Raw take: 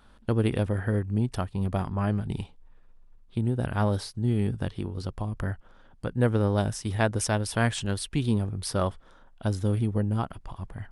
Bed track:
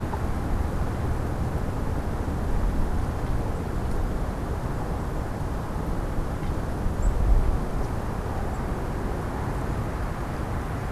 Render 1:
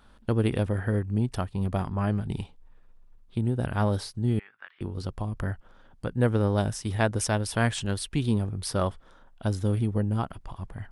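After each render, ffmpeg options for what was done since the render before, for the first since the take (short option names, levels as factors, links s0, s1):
-filter_complex "[0:a]asettb=1/sr,asplit=3[s0][s1][s2];[s0]atrim=end=4.394[s3];[s1]atrim=start=4.39:end=4.81,asetpts=PTS-STARTPTS,afade=t=in:d=0.004:c=qsin,afade=t=out:st=0.416:d=0.004:c=qsin,asuperpass=centerf=1700:order=4:qfactor=1.5[s4];[s2]atrim=start=4.806[s5];[s3][s4]acrossfade=d=0.004:c1=hsin:c2=qsin[s6];[s6][s5]acrossfade=d=0.004:c1=qsin:c2=hsin"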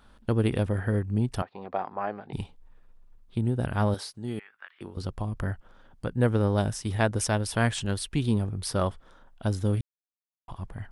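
-filter_complex "[0:a]asettb=1/sr,asplit=3[s0][s1][s2];[s0]atrim=end=1.424[s3];[s1]atrim=start=1.42:end=2.33,asetpts=PTS-STARTPTS,afade=t=in:d=0.004:c=qsin,afade=t=out:st=0.906:d=0.004:c=qsin,highpass=450,equalizer=f=490:t=q:w=4:g=3,equalizer=f=760:t=q:w=4:g=7,equalizer=f=3100:t=q:w=4:g=-9,lowpass=f=3800:w=0.5412,lowpass=f=3800:w=1.3066[s4];[s2]atrim=start=2.326[s5];[s3][s4]acrossfade=d=0.004:c1=hsin:c2=qsin[s6];[s6][s5]acrossfade=d=0.004:c1=qsin:c2=hsin,asettb=1/sr,asplit=3[s7][s8][s9];[s7]atrim=end=3.944[s10];[s8]atrim=start=3.94:end=4.97,asetpts=PTS-STARTPTS,afade=t=in:d=0.004:c=qsin,afade=t=out:st=1.026:d=0.004:c=qsin,highpass=f=440:p=1[s11];[s9]atrim=start=4.966[s12];[s10][s11]acrossfade=d=0.004:c1=hsin:c2=qsin[s13];[s13][s12]acrossfade=d=0.004:c1=qsin:c2=hsin,asplit=3[s14][s15][s16];[s14]atrim=end=9.81,asetpts=PTS-STARTPTS,afade=t=out:st=9.806:d=0.004:c=hsin[s17];[s15]atrim=start=9.81:end=10.48,asetpts=PTS-STARTPTS,volume=0[s18];[s16]atrim=start=10.48,asetpts=PTS-STARTPTS,afade=t=in:d=0.004:c=hsin[s19];[s17][s18][s19]concat=n=3:v=0:a=1"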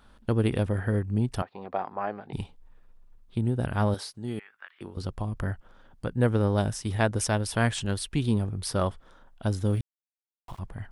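-filter_complex "[0:a]asettb=1/sr,asplit=3[s0][s1][s2];[s0]atrim=end=9.704[s3];[s1]atrim=start=9.7:end=10.59,asetpts=PTS-STARTPTS,afade=t=in:d=0.004:c=qsin,afade=t=out:st=0.886:d=0.004:c=qsin,aeval=exprs='val(0)*gte(abs(val(0)),0.00398)':c=same[s4];[s2]atrim=start=10.586[s5];[s3][s4]acrossfade=d=0.004:c1=hsin:c2=qsin[s6];[s6][s5]acrossfade=d=0.004:c1=qsin:c2=hsin"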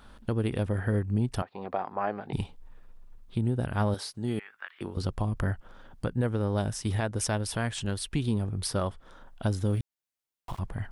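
-filter_complex "[0:a]asplit=2[s0][s1];[s1]acompressor=threshold=0.0178:ratio=6,volume=0.708[s2];[s0][s2]amix=inputs=2:normalize=0,alimiter=limit=0.141:level=0:latency=1:release=424"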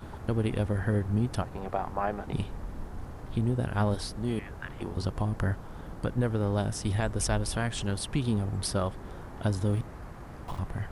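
-filter_complex "[1:a]volume=0.2[s0];[0:a][s0]amix=inputs=2:normalize=0"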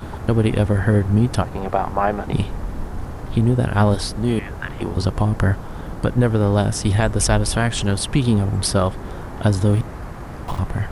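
-af "volume=3.55"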